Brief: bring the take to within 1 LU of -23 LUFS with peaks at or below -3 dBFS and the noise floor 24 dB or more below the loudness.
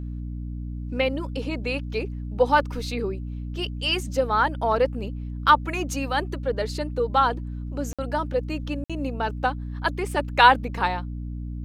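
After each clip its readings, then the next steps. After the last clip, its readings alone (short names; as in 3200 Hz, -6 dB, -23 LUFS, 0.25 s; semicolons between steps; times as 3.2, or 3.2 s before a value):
dropouts 2; longest dropout 56 ms; hum 60 Hz; harmonics up to 300 Hz; hum level -29 dBFS; loudness -25.0 LUFS; peak -3.0 dBFS; loudness target -23.0 LUFS
-> interpolate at 7.93/8.84, 56 ms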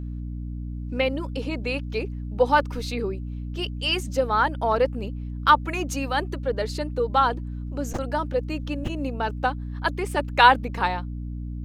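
dropouts 0; hum 60 Hz; harmonics up to 300 Hz; hum level -29 dBFS
-> notches 60/120/180/240/300 Hz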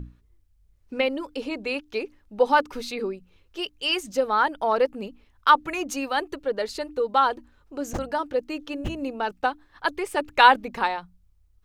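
hum none; loudness -25.0 LUFS; peak -3.0 dBFS; loudness target -23.0 LUFS
-> gain +2 dB; limiter -3 dBFS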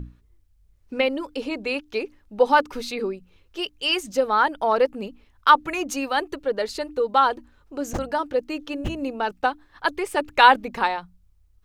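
loudness -23.0 LUFS; peak -3.0 dBFS; noise floor -60 dBFS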